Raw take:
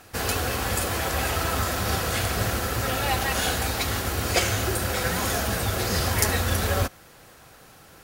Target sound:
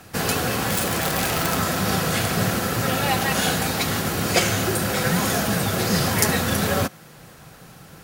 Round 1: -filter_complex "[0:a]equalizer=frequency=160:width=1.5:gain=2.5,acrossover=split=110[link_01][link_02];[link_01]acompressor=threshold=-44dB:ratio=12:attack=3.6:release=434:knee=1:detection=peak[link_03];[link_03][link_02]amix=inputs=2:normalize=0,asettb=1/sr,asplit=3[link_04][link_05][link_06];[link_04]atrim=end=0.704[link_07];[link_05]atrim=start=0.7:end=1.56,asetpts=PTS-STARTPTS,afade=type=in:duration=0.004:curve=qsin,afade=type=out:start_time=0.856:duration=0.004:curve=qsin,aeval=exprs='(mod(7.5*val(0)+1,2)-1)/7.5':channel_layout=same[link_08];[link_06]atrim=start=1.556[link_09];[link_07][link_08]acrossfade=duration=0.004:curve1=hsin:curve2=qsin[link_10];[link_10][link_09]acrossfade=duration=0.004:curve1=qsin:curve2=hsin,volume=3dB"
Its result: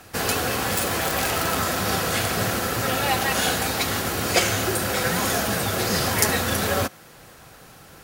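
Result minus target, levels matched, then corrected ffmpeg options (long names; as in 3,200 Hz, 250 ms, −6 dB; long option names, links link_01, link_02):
125 Hz band −3.5 dB
-filter_complex "[0:a]equalizer=frequency=160:width=1.5:gain=10.5,acrossover=split=110[link_01][link_02];[link_01]acompressor=threshold=-44dB:ratio=12:attack=3.6:release=434:knee=1:detection=peak[link_03];[link_03][link_02]amix=inputs=2:normalize=0,asettb=1/sr,asplit=3[link_04][link_05][link_06];[link_04]atrim=end=0.704[link_07];[link_05]atrim=start=0.7:end=1.56,asetpts=PTS-STARTPTS,afade=type=in:duration=0.004:curve=qsin,afade=type=out:start_time=0.856:duration=0.004:curve=qsin,aeval=exprs='(mod(7.5*val(0)+1,2)-1)/7.5':channel_layout=same[link_08];[link_06]atrim=start=1.556[link_09];[link_07][link_08]acrossfade=duration=0.004:curve1=hsin:curve2=qsin[link_10];[link_10][link_09]acrossfade=duration=0.004:curve1=qsin:curve2=hsin,volume=3dB"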